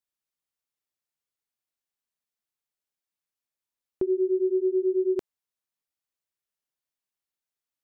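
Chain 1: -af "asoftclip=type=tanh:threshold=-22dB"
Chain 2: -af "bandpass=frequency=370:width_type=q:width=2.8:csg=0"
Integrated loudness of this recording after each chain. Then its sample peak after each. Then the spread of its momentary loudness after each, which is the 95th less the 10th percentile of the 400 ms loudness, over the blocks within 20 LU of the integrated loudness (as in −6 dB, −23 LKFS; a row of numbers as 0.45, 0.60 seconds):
−28.5, −26.0 LKFS; −23.0, −18.0 dBFS; 6, 6 LU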